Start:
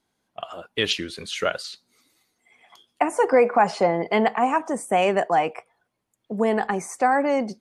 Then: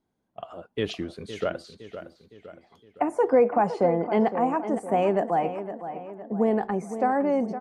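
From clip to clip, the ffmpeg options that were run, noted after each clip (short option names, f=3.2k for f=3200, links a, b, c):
-filter_complex "[0:a]tiltshelf=f=1.1k:g=8,asplit=2[a][b];[b]adelay=512,lowpass=f=3.3k:p=1,volume=-11dB,asplit=2[c][d];[d]adelay=512,lowpass=f=3.3k:p=1,volume=0.51,asplit=2[e][f];[f]adelay=512,lowpass=f=3.3k:p=1,volume=0.51,asplit=2[g][h];[h]adelay=512,lowpass=f=3.3k:p=1,volume=0.51,asplit=2[i][j];[j]adelay=512,lowpass=f=3.3k:p=1,volume=0.51[k];[a][c][e][g][i][k]amix=inputs=6:normalize=0,volume=-7dB"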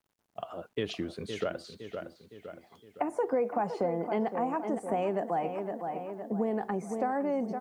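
-af "highpass=71,acompressor=threshold=-30dB:ratio=2.5,acrusher=bits=11:mix=0:aa=0.000001"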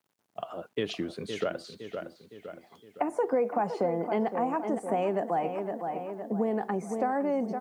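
-af "highpass=120,volume=2dB"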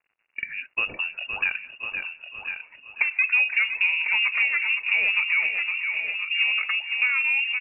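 -filter_complex "[0:a]equalizer=f=87:t=o:w=1.2:g=-11,asplit=2[a][b];[b]aecho=0:1:1050:0.376[c];[a][c]amix=inputs=2:normalize=0,lowpass=f=2.6k:t=q:w=0.5098,lowpass=f=2.6k:t=q:w=0.6013,lowpass=f=2.6k:t=q:w=0.9,lowpass=f=2.6k:t=q:w=2.563,afreqshift=-3000,volume=5.5dB"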